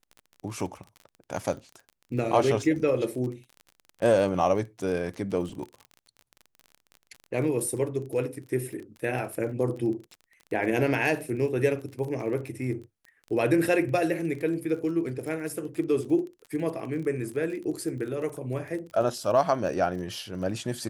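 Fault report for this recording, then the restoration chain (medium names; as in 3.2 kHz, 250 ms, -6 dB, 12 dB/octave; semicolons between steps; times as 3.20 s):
crackle 32 per s -36 dBFS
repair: de-click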